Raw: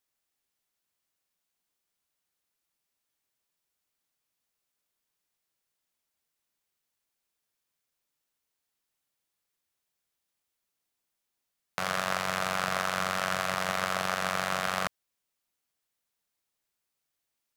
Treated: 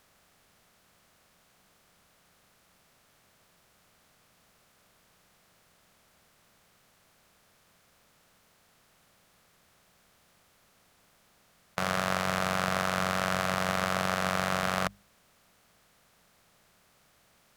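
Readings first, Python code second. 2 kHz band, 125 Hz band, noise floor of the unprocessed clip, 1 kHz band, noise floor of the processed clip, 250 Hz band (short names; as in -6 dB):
0.0 dB, +6.5 dB, -84 dBFS, +0.5 dB, -66 dBFS, +6.0 dB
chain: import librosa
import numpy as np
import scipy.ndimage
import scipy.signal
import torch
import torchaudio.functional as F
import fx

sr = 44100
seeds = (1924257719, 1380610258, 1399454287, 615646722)

y = fx.bin_compress(x, sr, power=0.6)
y = fx.low_shelf(y, sr, hz=410.0, db=8.5)
y = fx.hum_notches(y, sr, base_hz=50, count=4)
y = y * 10.0 ** (-2.5 / 20.0)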